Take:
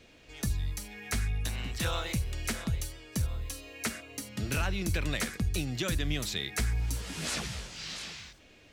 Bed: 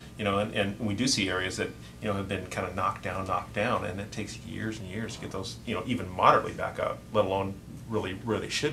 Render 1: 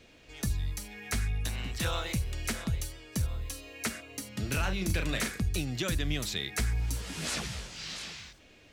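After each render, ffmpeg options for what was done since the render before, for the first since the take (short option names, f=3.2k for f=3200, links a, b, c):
-filter_complex "[0:a]asettb=1/sr,asplit=3[a][b][c];[a]atrim=end=4.604[d];[b]atrim=start=4.6:end=5.4,asetpts=PTS-STARTPTS,afade=t=in:d=0.004:c=qsin,afade=t=out:st=0.796:d=0.004:c=qsin,asplit=2[e][f];[f]adelay=37,volume=-6.5dB[g];[e][g]amix=inputs=2:normalize=0,atrim=end_sample=35280[h];[c]atrim=start=5.396[i];[d][h]acrossfade=d=0.004:c1=hsin:c2=qsin[j];[j][i]acrossfade=d=0.004:c1=qsin:c2=hsin"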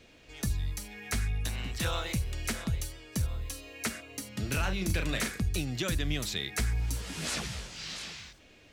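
-af anull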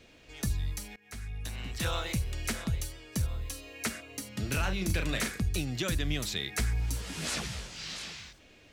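-filter_complex "[0:a]asplit=2[a][b];[a]atrim=end=0.96,asetpts=PTS-STARTPTS,afade=t=out:st=0.956:d=0.004:c=hsin:silence=0.0707946[c];[b]atrim=start=0.96,asetpts=PTS-STARTPTS,afade=t=in:d=0.95:silence=0.0707946[d];[c][d]concat=n=2:v=0:a=1"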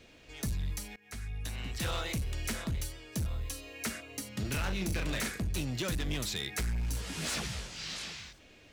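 -af "volume=29.5dB,asoftclip=hard,volume=-29.5dB"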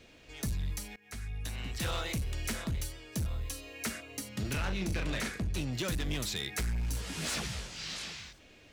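-filter_complex "[0:a]asettb=1/sr,asplit=3[a][b][c];[a]atrim=end=4.534[d];[b]atrim=start=4.53:end=5.73,asetpts=PTS-STARTPTS,afade=t=in:d=0.004:c=qsin,afade=t=out:st=1.196:d=0.004:c=qsin,highshelf=f=9.4k:g=-10.5[e];[c]atrim=start=5.726[f];[d][e]acrossfade=d=0.004:c1=hsin:c2=qsin[g];[g][f]acrossfade=d=0.004:c1=qsin:c2=hsin"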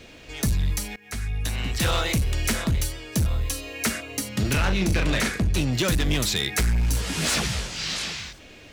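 -af "volume=11dB"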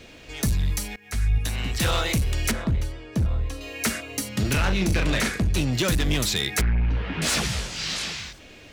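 -filter_complex "[0:a]asettb=1/sr,asplit=3[a][b][c];[a]atrim=end=0.804[d];[b]atrim=start=0.8:end=1.38,asetpts=PTS-STARTPTS,afade=t=in:d=0.004:c=qsin,afade=t=out:st=0.576:d=0.004:c=qsin,asubboost=boost=10:cutoff=150[e];[c]atrim=start=1.376[f];[d][e]acrossfade=d=0.004:c1=hsin:c2=qsin[g];[g][f]acrossfade=d=0.004:c1=qsin:c2=hsin,asettb=1/sr,asplit=3[h][i][j];[h]atrim=end=2.514[k];[i]atrim=start=2.51:end=3.61,asetpts=PTS-STARTPTS,afade=t=in:d=0.004:c=qsin,afade=t=out:st=1.096:d=0.004:c=qsin,lowpass=f=1.3k:p=1[l];[j]atrim=start=3.606[m];[k][l]acrossfade=d=0.004:c1=hsin:c2=qsin[n];[n][m]acrossfade=d=0.004:c1=qsin:c2=hsin,asettb=1/sr,asplit=3[o][p][q];[o]atrim=end=6.614[r];[p]atrim=start=6.61:end=7.22,asetpts=PTS-STARTPTS,afade=t=in:d=0.004:c=qsin,afade=t=out:st=0.606:d=0.004:c=qsin,lowpass=f=2.7k:w=0.5412,lowpass=f=2.7k:w=1.3066[s];[q]atrim=start=7.216[t];[r][s]acrossfade=d=0.004:c1=hsin:c2=qsin[u];[u][t]acrossfade=d=0.004:c1=qsin:c2=hsin"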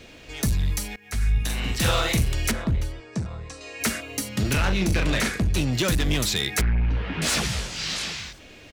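-filter_complex "[0:a]asplit=3[a][b][c];[a]afade=t=out:st=1.2:d=0.02[d];[b]asplit=2[e][f];[f]adelay=44,volume=-4dB[g];[e][g]amix=inputs=2:normalize=0,afade=t=in:st=1.2:d=0.02,afade=t=out:st=2.34:d=0.02[h];[c]afade=t=in:st=2.34:d=0.02[i];[d][h][i]amix=inputs=3:normalize=0,asettb=1/sr,asplit=3[j][k][l];[j]atrim=end=3.004[m];[k]atrim=start=3:end=3.81,asetpts=PTS-STARTPTS,afade=t=in:d=0.004:c=qsin,afade=t=out:st=0.806:d=0.004:c=qsin,highpass=130,equalizer=f=280:t=q:w=4:g=-9,equalizer=f=550:t=q:w=4:g=-4,equalizer=f=3.1k:t=q:w=4:g=-7,equalizer=f=5.4k:t=q:w=4:g=3,equalizer=f=8k:t=q:w=4:g=6,lowpass=f=8.4k:w=0.5412,lowpass=f=8.4k:w=1.3066[n];[l]atrim=start=3.806[o];[m][n]acrossfade=d=0.004:c1=hsin:c2=qsin[p];[p][o]acrossfade=d=0.004:c1=qsin:c2=hsin"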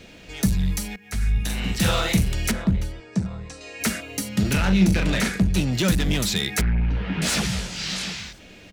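-af "equalizer=f=190:t=o:w=0.24:g=11.5,bandreject=f=1.1k:w=16"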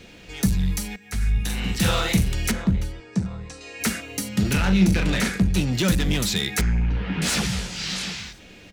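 -af "bandreject=f=630:w=13,bandreject=f=269.8:t=h:w=4,bandreject=f=539.6:t=h:w=4,bandreject=f=809.4:t=h:w=4,bandreject=f=1.0792k:t=h:w=4,bandreject=f=1.349k:t=h:w=4,bandreject=f=1.6188k:t=h:w=4,bandreject=f=1.8886k:t=h:w=4,bandreject=f=2.1584k:t=h:w=4,bandreject=f=2.4282k:t=h:w=4,bandreject=f=2.698k:t=h:w=4,bandreject=f=2.9678k:t=h:w=4,bandreject=f=3.2376k:t=h:w=4,bandreject=f=3.5074k:t=h:w=4,bandreject=f=3.7772k:t=h:w=4,bandreject=f=4.047k:t=h:w=4,bandreject=f=4.3168k:t=h:w=4,bandreject=f=4.5866k:t=h:w=4,bandreject=f=4.8564k:t=h:w=4,bandreject=f=5.1262k:t=h:w=4,bandreject=f=5.396k:t=h:w=4,bandreject=f=5.6658k:t=h:w=4,bandreject=f=5.9356k:t=h:w=4,bandreject=f=6.2054k:t=h:w=4,bandreject=f=6.4752k:t=h:w=4,bandreject=f=6.745k:t=h:w=4,bandreject=f=7.0148k:t=h:w=4,bandreject=f=7.2846k:t=h:w=4,bandreject=f=7.5544k:t=h:w=4,bandreject=f=7.8242k:t=h:w=4,bandreject=f=8.094k:t=h:w=4,bandreject=f=8.3638k:t=h:w=4"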